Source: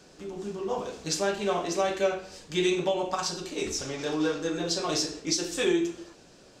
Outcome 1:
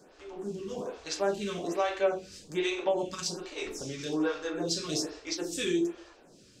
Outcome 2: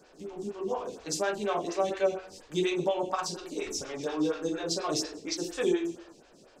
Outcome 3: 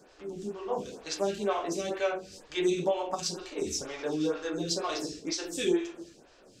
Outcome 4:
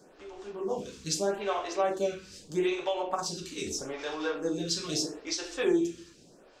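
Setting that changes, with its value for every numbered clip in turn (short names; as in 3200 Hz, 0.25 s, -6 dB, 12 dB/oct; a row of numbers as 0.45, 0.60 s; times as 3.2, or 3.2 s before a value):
photocell phaser, rate: 1.2, 4.2, 2.1, 0.79 Hz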